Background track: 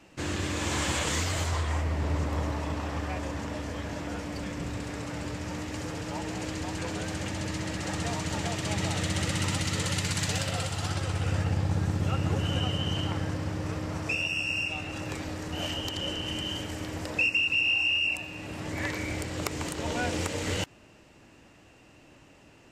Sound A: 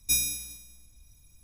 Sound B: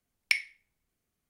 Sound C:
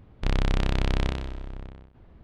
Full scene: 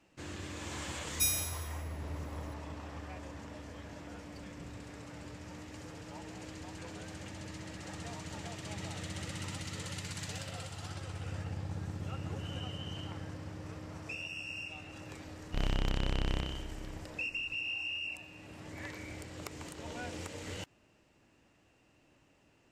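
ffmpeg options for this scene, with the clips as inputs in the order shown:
-filter_complex "[0:a]volume=0.251[s0];[1:a]atrim=end=1.43,asetpts=PTS-STARTPTS,volume=0.562,afade=t=in:d=0.004:c=hsin,afade=t=out:st=1.426:d=0.004:c=hsin,adelay=1110[s1];[3:a]atrim=end=2.23,asetpts=PTS-STARTPTS,volume=0.398,afade=t=in:d=0.004:c=hsin,afade=t=out:st=2.226:d=0.004:c=hsin,adelay=15310[s2];[s0][s1][s2]amix=inputs=3:normalize=0"

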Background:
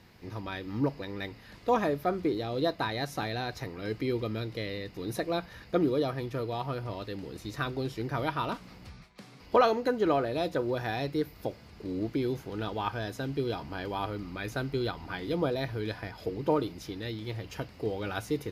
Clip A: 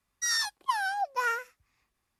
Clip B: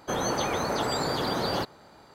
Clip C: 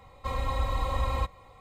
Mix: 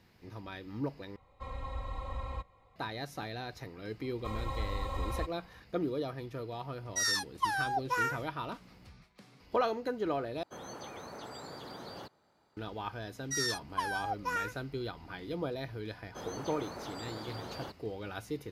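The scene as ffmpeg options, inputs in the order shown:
-filter_complex "[3:a]asplit=2[s0][s1];[1:a]asplit=2[s2][s3];[2:a]asplit=2[s4][s5];[0:a]volume=0.447[s6];[s0]aemphasis=mode=reproduction:type=50kf[s7];[s4]highpass=50[s8];[s6]asplit=3[s9][s10][s11];[s9]atrim=end=1.164[s12];[s7]atrim=end=1.6,asetpts=PTS-STARTPTS,volume=0.299[s13];[s10]atrim=start=2.756:end=10.434[s14];[s8]atrim=end=2.14,asetpts=PTS-STARTPTS,volume=0.133[s15];[s11]atrim=start=12.566[s16];[s1]atrim=end=1.6,asetpts=PTS-STARTPTS,volume=0.422,afade=t=in:d=0.004:c=hsin,afade=t=out:st=1.596:d=0.004:c=hsin,adelay=4000[s17];[s2]atrim=end=2.19,asetpts=PTS-STARTPTS,volume=0.75,afade=t=in:d=0.004:c=hsin,afade=t=out:st=2.186:d=0.004:c=hsin,adelay=297234S[s18];[s3]atrim=end=2.19,asetpts=PTS-STARTPTS,volume=0.531,afade=t=in:d=0.004:c=hsin,afade=t=out:st=2.186:d=0.004:c=hsin,adelay=13090[s19];[s5]atrim=end=2.14,asetpts=PTS-STARTPTS,volume=0.168,afade=t=in:d=0.004:c=hsin,afade=t=out:st=2.136:d=0.004:c=hsin,adelay=16070[s20];[s12][s13]acrossfade=d=0.004:c1=hsin:c2=hsin[s21];[s21][s14]acrossfade=d=0.004:c1=hsin:c2=hsin[s22];[s22][s15]acrossfade=d=0.004:c1=hsin:c2=hsin[s23];[s23][s16]acrossfade=d=0.004:c1=hsin:c2=hsin[s24];[s24][s17][s18][s19][s20]amix=inputs=5:normalize=0"

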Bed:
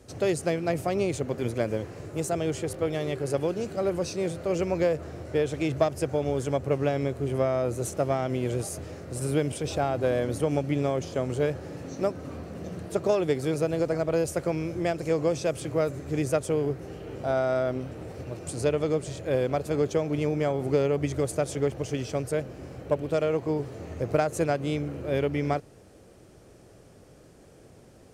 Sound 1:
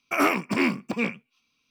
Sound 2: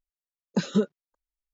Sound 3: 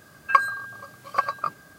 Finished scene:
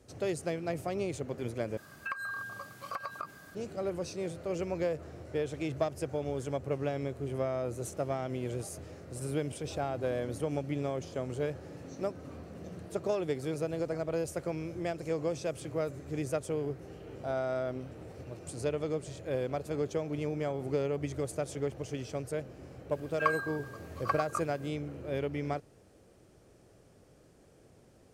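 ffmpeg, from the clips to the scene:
-filter_complex "[3:a]asplit=2[s0][s1];[0:a]volume=0.422[s2];[s0]acompressor=threshold=0.0251:ratio=6:attack=3.2:release=140:knee=1:detection=peak[s3];[s1]alimiter=limit=0.473:level=0:latency=1:release=27[s4];[s2]asplit=2[s5][s6];[s5]atrim=end=1.774[s7];[s3]atrim=end=1.78,asetpts=PTS-STARTPTS,volume=0.794[s8];[s6]atrim=start=3.546[s9];[s4]atrim=end=1.78,asetpts=PTS-STARTPTS,volume=0.398,afade=t=in:d=0.004:c=hsin,afade=t=out:st=1.776:d=0.004:c=hsin,adelay=22910[s10];[s7][s8]acrossfade=d=0.004:c1=hsin:c2=hsin[s11];[s11][s9]acrossfade=d=0.004:c1=hsin:c2=hsin[s12];[s12][s10]amix=inputs=2:normalize=0"

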